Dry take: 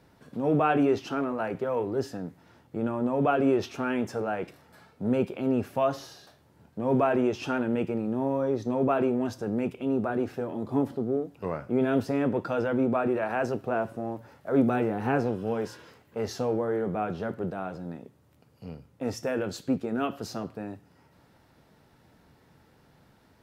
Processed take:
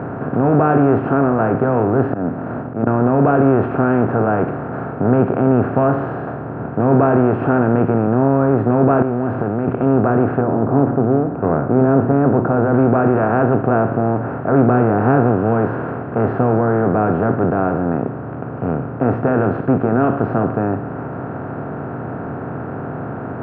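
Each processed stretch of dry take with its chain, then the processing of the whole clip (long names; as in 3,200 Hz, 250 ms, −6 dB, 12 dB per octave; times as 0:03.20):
0:02.10–0:02.87: downward expander −55 dBFS + hollow resonant body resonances 240/600/4,000 Hz, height 11 dB + volume swells 330 ms
0:09.02–0:09.68: spike at every zero crossing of −33.5 dBFS + high-frequency loss of the air 160 metres + downward compressor 5 to 1, threshold −37 dBFS
0:10.41–0:12.74: low-pass filter 1,000 Hz + mains-hum notches 60/120/180/240/300/360 Hz + floating-point word with a short mantissa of 6 bits
whole clip: compressor on every frequency bin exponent 0.4; low-pass filter 1,700 Hz 24 dB per octave; parametric band 110 Hz +8.5 dB 1.1 octaves; level +4.5 dB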